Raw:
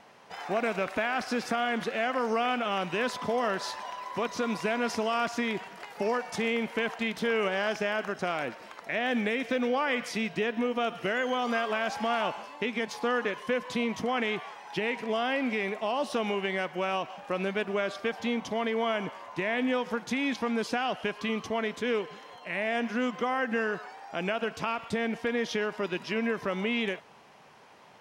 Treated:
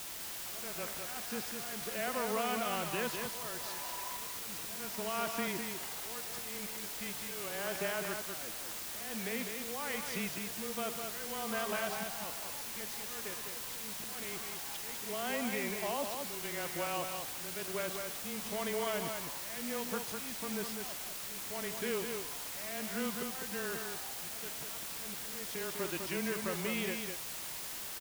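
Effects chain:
frequency shifter −16 Hz
volume swells 570 ms
bit-depth reduction 6 bits, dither triangular
single-tap delay 202 ms −5.5 dB
level −7.5 dB

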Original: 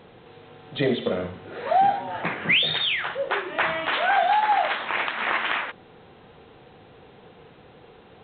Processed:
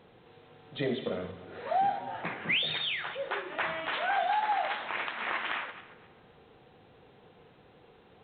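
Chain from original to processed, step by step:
feedback delay that plays each chunk backwards 132 ms, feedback 49%, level −14 dB
level −8.5 dB

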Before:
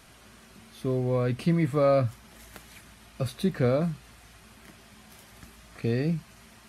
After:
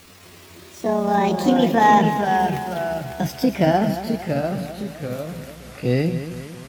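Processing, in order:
pitch glide at a constant tempo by +10 semitones ending unshifted
repeating echo 228 ms, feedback 52%, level −11 dB
delay with pitch and tempo change per echo 239 ms, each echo −2 semitones, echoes 2, each echo −6 dB
level +8 dB

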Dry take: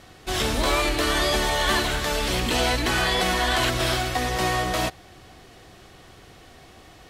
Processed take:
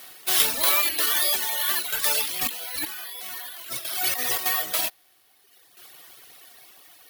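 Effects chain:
low-pass filter 5,600 Hz 12 dB per octave
reverb reduction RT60 1.5 s
high-pass filter 1,100 Hz 6 dB per octave
high-shelf EQ 4,400 Hz +11.5 dB
0:02.21–0:04.46: compressor whose output falls as the input rises −36 dBFS, ratio −1
bad sample-rate conversion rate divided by 3×, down none, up zero stuff
shaped tremolo saw down 0.52 Hz, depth 65%
level +2.5 dB

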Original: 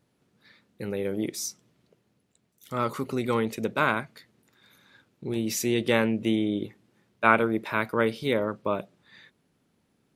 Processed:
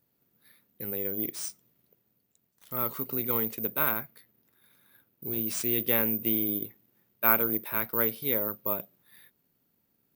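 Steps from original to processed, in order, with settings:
0:03.90–0:05.24: high-shelf EQ 4,800 Hz −6.5 dB
bad sample-rate conversion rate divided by 3×, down none, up zero stuff
level −7.5 dB

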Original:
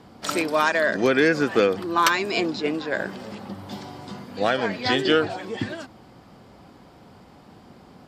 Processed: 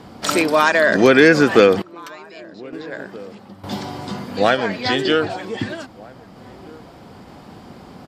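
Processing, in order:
in parallel at −2 dB: brickwall limiter −16 dBFS, peak gain reduction 7 dB
on the sum: sample-and-hold tremolo 1.1 Hz, depth 95%
slap from a distant wall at 270 metres, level −23 dB
level +5 dB

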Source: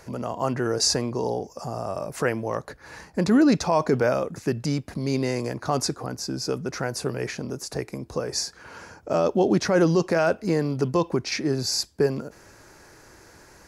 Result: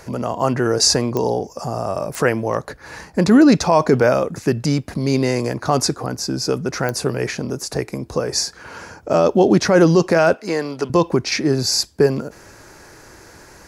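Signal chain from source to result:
0:10.34–0:10.90: meter weighting curve A
digital clicks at 0:01.17/0:02.15/0:06.89, −16 dBFS
level +7 dB

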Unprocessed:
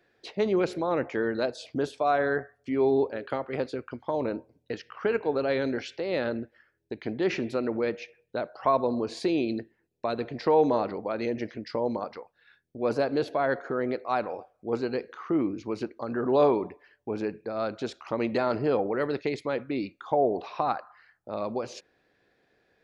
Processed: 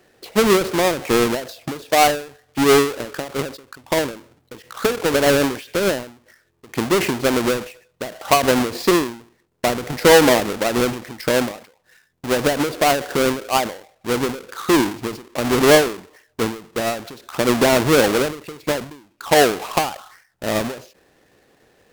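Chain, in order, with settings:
each half-wave held at its own peak
wrong playback speed 24 fps film run at 25 fps
every ending faded ahead of time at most 120 dB per second
level +7.5 dB

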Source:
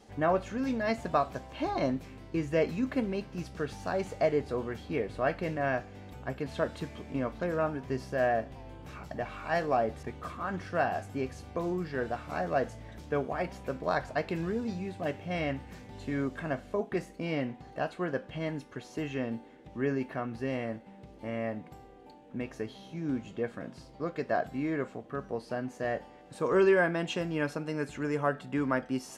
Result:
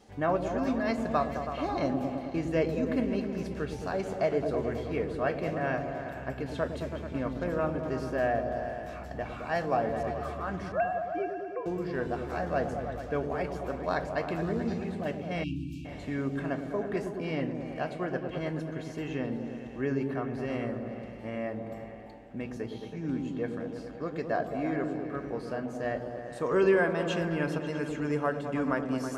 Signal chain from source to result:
0:10.72–0:11.66: three sine waves on the formant tracks
echo whose low-pass opens from repeat to repeat 108 ms, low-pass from 400 Hz, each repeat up 1 octave, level −3 dB
0:15.44–0:15.85: time-frequency box erased 350–2,300 Hz
level −1 dB

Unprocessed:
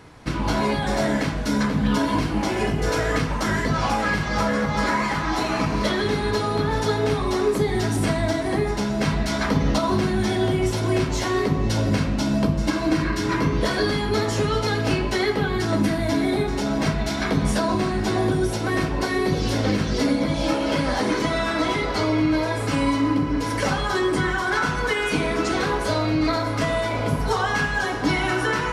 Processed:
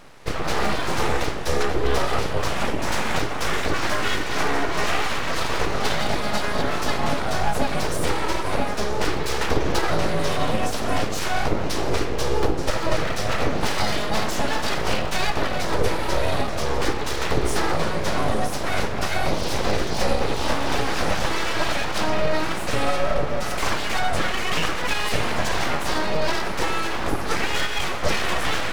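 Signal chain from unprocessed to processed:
low shelf with overshoot 120 Hz −8.5 dB, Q 1.5
full-wave rectification
level +2 dB

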